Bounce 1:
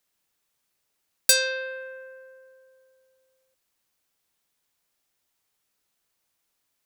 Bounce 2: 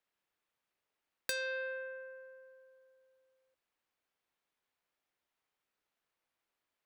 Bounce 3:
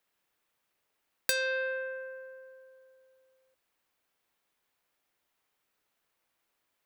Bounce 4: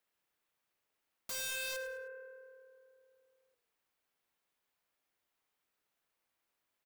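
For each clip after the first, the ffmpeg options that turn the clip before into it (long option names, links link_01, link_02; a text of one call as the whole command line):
ffmpeg -i in.wav -af "bass=frequency=250:gain=-6,treble=frequency=4000:gain=-14,acompressor=threshold=-29dB:ratio=6,volume=-4.5dB" out.wav
ffmpeg -i in.wav -af "highshelf=frequency=11000:gain=6,volume=6.5dB" out.wav
ffmpeg -i in.wav -filter_complex "[0:a]aeval=exprs='(mod(28.2*val(0)+1,2)-1)/28.2':channel_layout=same,asplit=4[link_01][link_02][link_03][link_04];[link_02]adelay=104,afreqshift=-38,volume=-14dB[link_05];[link_03]adelay=208,afreqshift=-76,volume=-23.1dB[link_06];[link_04]adelay=312,afreqshift=-114,volume=-32.2dB[link_07];[link_01][link_05][link_06][link_07]amix=inputs=4:normalize=0,volume=-5.5dB" out.wav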